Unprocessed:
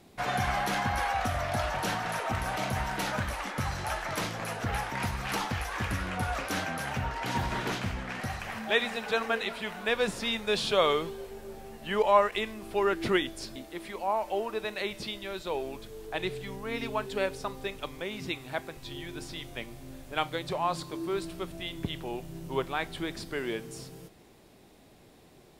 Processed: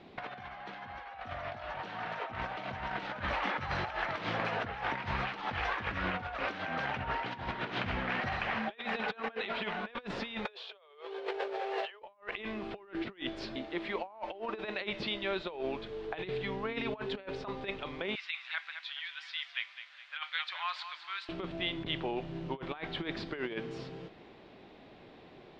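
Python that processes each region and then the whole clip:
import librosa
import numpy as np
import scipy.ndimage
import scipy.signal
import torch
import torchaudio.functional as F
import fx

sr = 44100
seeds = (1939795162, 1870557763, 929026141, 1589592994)

y = fx.chain(x, sr, fx.steep_highpass(hz=390.0, slope=96),
    fx.env_flatten(amount_pct=50), at=(10.45, 12.02))
y = fx.chain(y, sr, fx.highpass(hz=1400.0, slope=24),
    fx.echo_feedback(ms=209, feedback_pct=39, wet_db=-11.0), at=(18.15, 21.29))
y = scipy.signal.sosfilt(scipy.signal.butter(4, 3700.0, 'lowpass', fs=sr, output='sos'), y)
y = fx.low_shelf(y, sr, hz=140.0, db=-10.0)
y = fx.over_compress(y, sr, threshold_db=-37.0, ratio=-0.5)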